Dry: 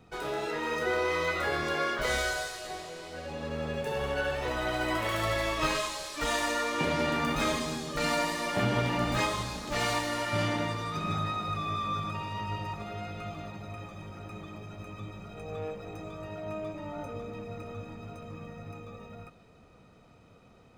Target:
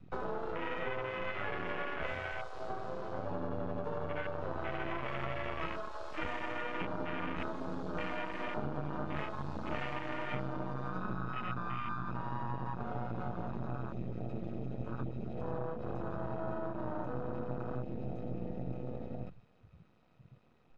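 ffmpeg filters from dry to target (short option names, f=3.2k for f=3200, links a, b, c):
-filter_complex "[0:a]lowshelf=f=88:g=-9.5,afreqshift=23,acrossover=split=190|530|3400[a][b][c][d];[a]acontrast=70[e];[e][b][c][d]amix=inputs=4:normalize=0,aeval=exprs='max(val(0),0)':c=same,asplit=2[f][g];[g]adelay=565.6,volume=-27dB,highshelf=f=4k:g=-12.7[h];[f][h]amix=inputs=2:normalize=0,acompressor=threshold=-40dB:ratio=12,afwtdn=0.00447,lowpass=4.6k,volume=9dB"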